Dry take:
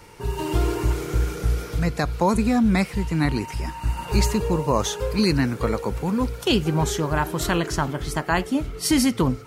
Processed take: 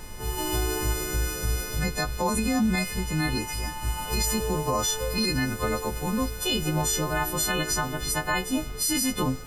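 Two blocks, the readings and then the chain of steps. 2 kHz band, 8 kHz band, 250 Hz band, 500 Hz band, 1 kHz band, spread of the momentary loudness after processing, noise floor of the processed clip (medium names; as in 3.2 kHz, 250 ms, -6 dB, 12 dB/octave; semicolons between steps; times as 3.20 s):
-0.5 dB, +4.5 dB, -6.0 dB, -5.0 dB, -3.5 dB, 5 LU, -36 dBFS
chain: partials quantised in pitch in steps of 3 st; added noise brown -36 dBFS; peak limiter -12.5 dBFS, peak gain reduction 10.5 dB; trim -3.5 dB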